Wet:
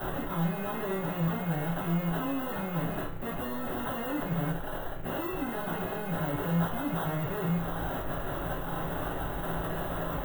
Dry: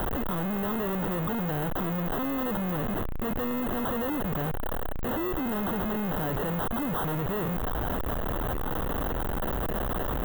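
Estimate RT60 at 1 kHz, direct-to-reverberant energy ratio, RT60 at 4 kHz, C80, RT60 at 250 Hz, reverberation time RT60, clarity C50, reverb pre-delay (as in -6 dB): 0.40 s, -12.0 dB, 0.40 s, 12.0 dB, 0.45 s, 0.40 s, 7.0 dB, 6 ms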